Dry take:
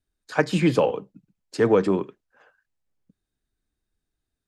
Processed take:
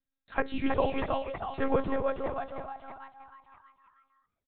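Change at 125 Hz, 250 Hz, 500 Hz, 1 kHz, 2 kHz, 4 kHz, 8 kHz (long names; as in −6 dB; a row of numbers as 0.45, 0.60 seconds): −12.0 dB, −9.0 dB, −8.0 dB, −1.5 dB, −6.0 dB, −8.5 dB, can't be measured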